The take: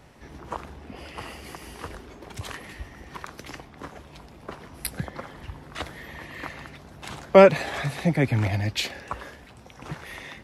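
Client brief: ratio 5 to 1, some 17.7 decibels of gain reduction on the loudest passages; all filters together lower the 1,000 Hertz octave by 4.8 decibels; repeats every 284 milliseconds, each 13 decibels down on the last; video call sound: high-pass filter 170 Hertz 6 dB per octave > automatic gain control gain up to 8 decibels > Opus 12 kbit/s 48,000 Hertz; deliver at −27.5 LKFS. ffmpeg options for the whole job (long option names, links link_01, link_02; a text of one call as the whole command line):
ffmpeg -i in.wav -af "equalizer=frequency=1000:width_type=o:gain=-6.5,acompressor=threshold=-29dB:ratio=5,highpass=frequency=170:poles=1,aecho=1:1:284|568|852:0.224|0.0493|0.0108,dynaudnorm=maxgain=8dB,volume=13.5dB" -ar 48000 -c:a libopus -b:a 12k out.opus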